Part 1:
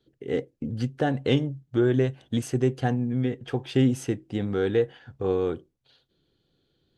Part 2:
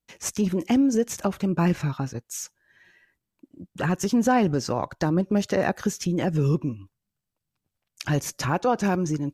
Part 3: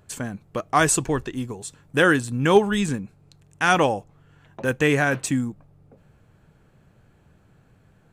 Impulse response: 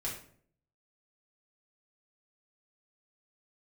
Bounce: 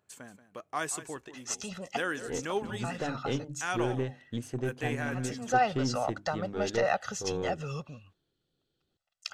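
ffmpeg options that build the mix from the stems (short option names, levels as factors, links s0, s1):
-filter_complex "[0:a]bandreject=f=50:t=h:w=6,bandreject=f=100:t=h:w=6,bandreject=f=150:t=h:w=6,bandreject=f=200:t=h:w=6,bandreject=f=250:t=h:w=6,bandreject=f=300:t=h:w=6,aeval=exprs='0.316*(cos(1*acos(clip(val(0)/0.316,-1,1)))-cos(1*PI/2))+0.0178*(cos(6*acos(clip(val(0)/0.316,-1,1)))-cos(6*PI/2))':c=same,adelay=2000,volume=0.335[s0];[1:a]acrossover=split=590 7800:gain=0.158 1 0.0708[s1][s2][s3];[s1][s2][s3]amix=inputs=3:normalize=0,bandreject=f=2200:w=6.7,aecho=1:1:1.5:0.87,adelay=1250,volume=0.708[s4];[2:a]highpass=f=370:p=1,volume=0.2,asplit=3[s5][s6][s7];[s6]volume=0.2[s8];[s7]apad=whole_len=466953[s9];[s4][s9]sidechaincompress=threshold=0.00501:ratio=8:attack=26:release=234[s10];[s8]aecho=0:1:181:1[s11];[s0][s10][s5][s11]amix=inputs=4:normalize=0"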